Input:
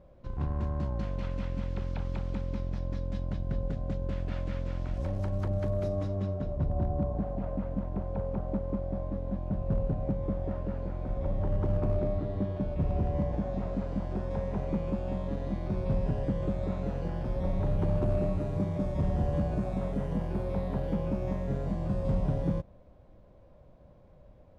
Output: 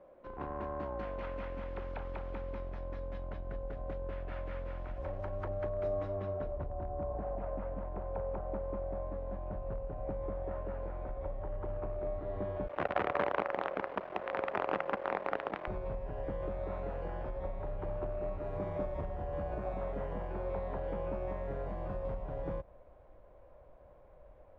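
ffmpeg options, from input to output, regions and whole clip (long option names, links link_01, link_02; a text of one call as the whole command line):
ffmpeg -i in.wav -filter_complex "[0:a]asettb=1/sr,asplit=3[link_01][link_02][link_03];[link_01]atrim=end=12.674[link_04];[link_02]atrim=start=12.67:end=15.67,asetpts=PTS-STARTPTS,afade=type=in:duration=0.004:curve=qsin,afade=type=out:start_time=2.996:duration=0.004:curve=qsin,acrusher=bits=5:dc=4:mix=0:aa=0.000001,highpass=190,lowpass=2700[link_05];[link_03]atrim=start=15.666[link_06];[link_04][link_05]acrossfade=duration=0.004:curve1=hsin:curve2=qsin[link_07];[link_07][link_06]acrossfade=duration=0.004:curve1=qsin:curve2=hsin,asubboost=boost=10:cutoff=73,acompressor=threshold=-18dB:ratio=6,acrossover=split=290 2600:gain=0.0708 1 0.0891[link_08][link_09][link_10];[link_08][link_09][link_10]amix=inputs=3:normalize=0,volume=3.5dB" out.wav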